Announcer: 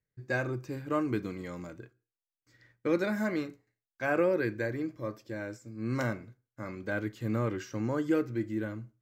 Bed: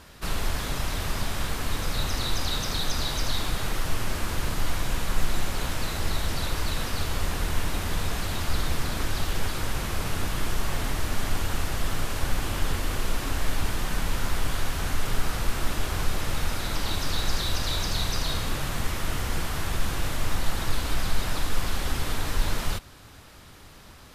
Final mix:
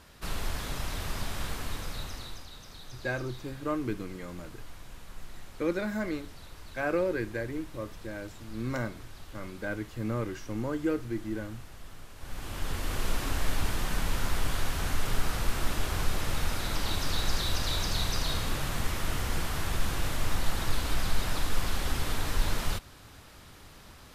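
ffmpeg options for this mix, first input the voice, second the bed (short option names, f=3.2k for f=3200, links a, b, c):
-filter_complex "[0:a]adelay=2750,volume=-1.5dB[a];[1:a]volume=11.5dB,afade=t=out:st=1.51:d=0.96:silence=0.199526,afade=t=in:st=12.17:d=0.91:silence=0.141254[b];[a][b]amix=inputs=2:normalize=0"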